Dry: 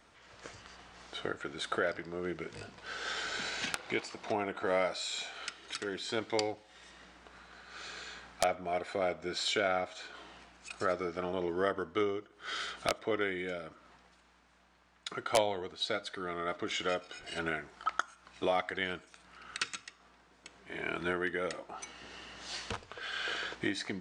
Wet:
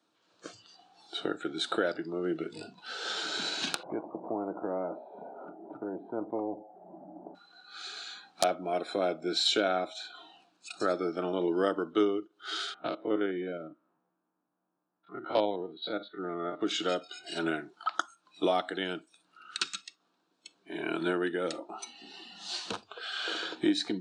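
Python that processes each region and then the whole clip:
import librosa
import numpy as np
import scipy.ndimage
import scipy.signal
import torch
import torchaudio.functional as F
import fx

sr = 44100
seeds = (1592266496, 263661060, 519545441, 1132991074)

y = fx.chain(x, sr, fx.ladder_lowpass(hz=750.0, resonance_pct=50),
    fx.spectral_comp(ratio=2.0), at=(3.83, 7.35))
y = fx.chain(y, sr, fx.spec_steps(hold_ms=50),
    fx.env_lowpass(base_hz=1200.0, full_db=-30.5),
    fx.air_absorb(metres=280.0), at=(12.74, 16.61))
y = fx.graphic_eq_31(y, sr, hz=(315, 2000, 4000), db=(9, -12, 7))
y = fx.noise_reduce_blind(y, sr, reduce_db=15)
y = scipy.signal.sosfilt(scipy.signal.butter(4, 140.0, 'highpass', fs=sr, output='sos'), y)
y = y * librosa.db_to_amplitude(2.5)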